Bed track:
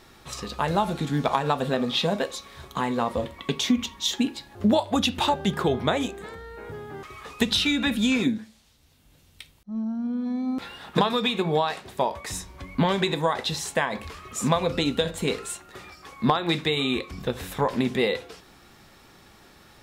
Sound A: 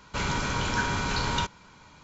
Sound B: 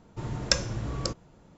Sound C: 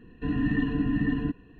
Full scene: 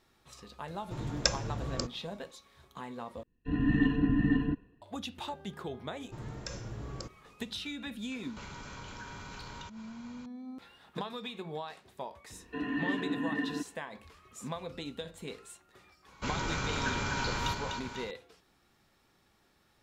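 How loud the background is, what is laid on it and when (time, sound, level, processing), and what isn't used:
bed track −16.5 dB
0:00.74: mix in B −4 dB
0:03.23: overwrite with C −1 dB + multiband upward and downward expander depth 100%
0:05.95: mix in B −8.5 dB + brickwall limiter −14 dBFS
0:08.23: mix in A −1.5 dB + downward compressor 3 to 1, threshold −46 dBFS
0:12.31: mix in C + high-pass filter 400 Hz
0:16.08: mix in A −6.5 dB + echo with a time of its own for lows and highs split 690 Hz, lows 185 ms, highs 248 ms, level −5 dB

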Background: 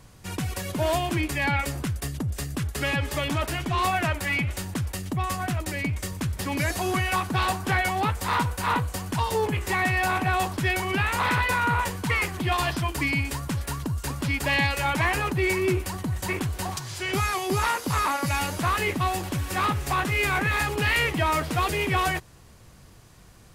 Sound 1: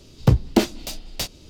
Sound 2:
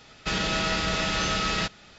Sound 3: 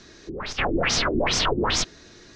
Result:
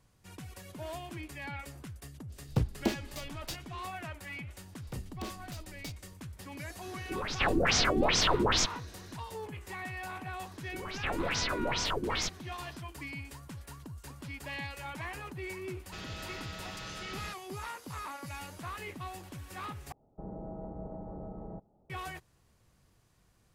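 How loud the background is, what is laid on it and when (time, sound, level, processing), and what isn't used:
background −16.5 dB
0:02.29: mix in 1 −13 dB, fades 0.02 s
0:04.65: mix in 1 −16 dB + soft clipping −19.5 dBFS
0:06.82: mix in 3 −4 dB
0:10.45: mix in 3 −10 dB
0:15.66: mix in 2 −17 dB
0:19.92: overwrite with 2 −11 dB + elliptic low-pass filter 820 Hz, stop band 80 dB

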